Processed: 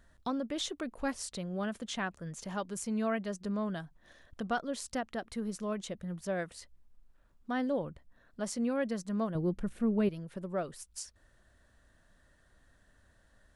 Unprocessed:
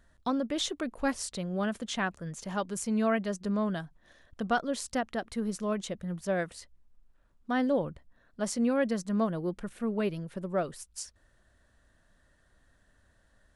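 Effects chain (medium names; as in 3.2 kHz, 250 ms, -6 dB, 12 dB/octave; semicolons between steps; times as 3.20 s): 9.35–10.09 s: bass shelf 330 Hz +11.5 dB; in parallel at +1 dB: compression, threshold -44 dBFS, peak gain reduction 22.5 dB; on the sum: trim -6 dB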